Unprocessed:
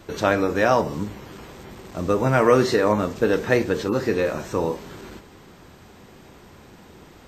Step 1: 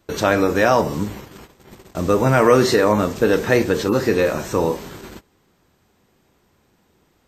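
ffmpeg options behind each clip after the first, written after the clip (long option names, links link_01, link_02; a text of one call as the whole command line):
ffmpeg -i in.wav -filter_complex "[0:a]highshelf=frequency=7700:gain=7.5,agate=range=-19dB:threshold=-38dB:ratio=16:detection=peak,asplit=2[link_01][link_02];[link_02]alimiter=limit=-11.5dB:level=0:latency=1:release=31,volume=-1dB[link_03];[link_01][link_03]amix=inputs=2:normalize=0,volume=-1dB" out.wav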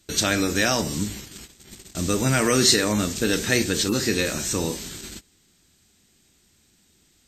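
ffmpeg -i in.wav -af "equalizer=frequency=125:width_type=o:width=1:gain=-4,equalizer=frequency=500:width_type=o:width=1:gain=-9,equalizer=frequency=1000:width_type=o:width=1:gain=-11,equalizer=frequency=4000:width_type=o:width=1:gain=5,equalizer=frequency=8000:width_type=o:width=1:gain=11" out.wav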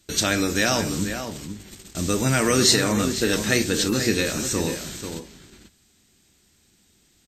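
ffmpeg -i in.wav -filter_complex "[0:a]asplit=2[link_01][link_02];[link_02]adelay=489.8,volume=-8dB,highshelf=frequency=4000:gain=-11[link_03];[link_01][link_03]amix=inputs=2:normalize=0" out.wav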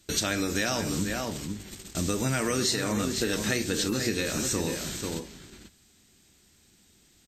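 ffmpeg -i in.wav -af "acompressor=threshold=-25dB:ratio=4" out.wav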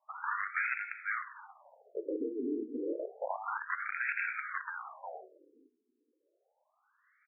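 ffmpeg -i in.wav -af "highpass=frequency=250:width_type=q:width=0.5412,highpass=frequency=250:width_type=q:width=1.307,lowpass=frequency=2600:width_type=q:width=0.5176,lowpass=frequency=2600:width_type=q:width=0.7071,lowpass=frequency=2600:width_type=q:width=1.932,afreqshift=-190,aeval=exprs='(mod(15.8*val(0)+1,2)-1)/15.8':channel_layout=same,afftfilt=real='re*between(b*sr/1024,320*pow(1900/320,0.5+0.5*sin(2*PI*0.3*pts/sr))/1.41,320*pow(1900/320,0.5+0.5*sin(2*PI*0.3*pts/sr))*1.41)':imag='im*between(b*sr/1024,320*pow(1900/320,0.5+0.5*sin(2*PI*0.3*pts/sr))/1.41,320*pow(1900/320,0.5+0.5*sin(2*PI*0.3*pts/sr))*1.41)':win_size=1024:overlap=0.75,volume=4dB" out.wav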